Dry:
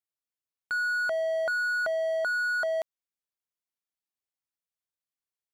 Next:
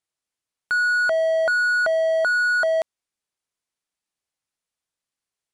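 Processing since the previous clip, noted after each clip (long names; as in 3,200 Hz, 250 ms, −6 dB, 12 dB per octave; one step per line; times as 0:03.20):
Butterworth low-pass 11,000 Hz 36 dB per octave
level +8 dB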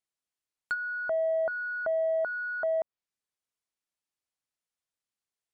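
treble cut that deepens with the level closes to 1,000 Hz, closed at −18.5 dBFS
level −6.5 dB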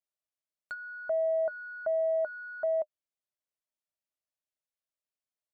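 parametric band 610 Hz +13 dB 0.22 octaves
level −8.5 dB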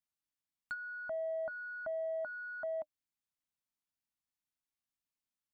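drawn EQ curve 300 Hz 0 dB, 430 Hz −26 dB, 820 Hz −5 dB
level +3.5 dB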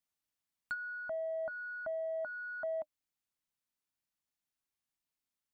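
speech leveller 0.5 s
level +1 dB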